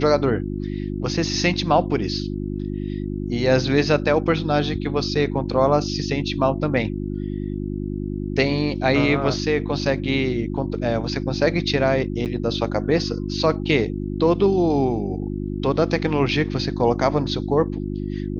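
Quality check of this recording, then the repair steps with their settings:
hum 50 Hz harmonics 7 -27 dBFS
12.25–12.26 gap 8.5 ms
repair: de-hum 50 Hz, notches 7; interpolate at 12.25, 8.5 ms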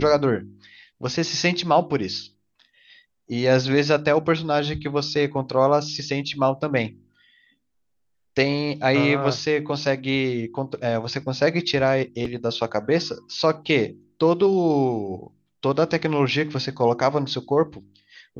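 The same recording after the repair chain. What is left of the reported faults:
none

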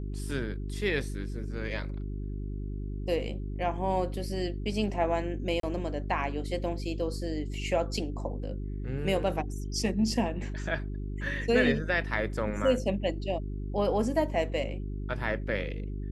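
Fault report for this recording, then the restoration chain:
hum 50 Hz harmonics 8 -35 dBFS
5.6–5.63 gap 33 ms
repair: de-hum 50 Hz, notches 8; interpolate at 5.6, 33 ms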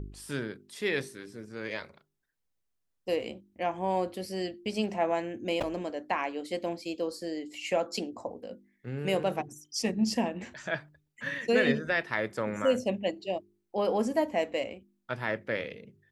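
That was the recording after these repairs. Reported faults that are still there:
none

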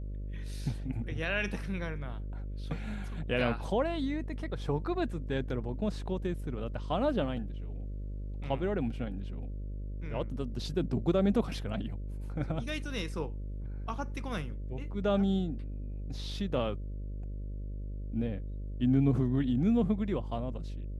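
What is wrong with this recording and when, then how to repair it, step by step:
buzz 50 Hz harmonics 12 -38 dBFS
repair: de-hum 50 Hz, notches 12

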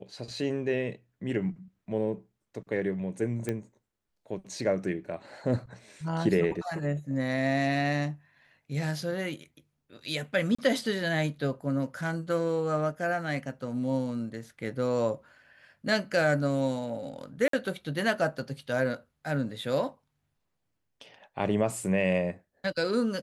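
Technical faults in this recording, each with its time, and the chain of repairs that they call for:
3.49 pop -18 dBFS
10.55–10.59 gap 35 ms
17.48–17.53 gap 53 ms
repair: de-click; interpolate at 10.55, 35 ms; interpolate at 17.48, 53 ms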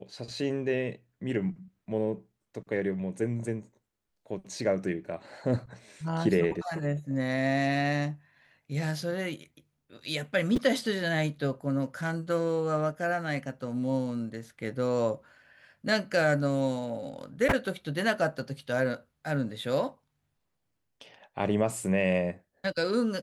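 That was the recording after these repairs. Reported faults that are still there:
3.49 pop

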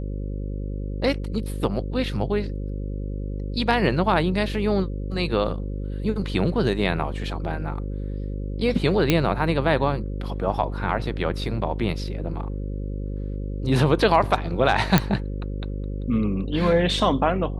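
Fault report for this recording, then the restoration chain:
buzz 50 Hz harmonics 11 -29 dBFS
9.1 pop -4 dBFS
14.98 pop -3 dBFS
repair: de-click; de-hum 50 Hz, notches 11

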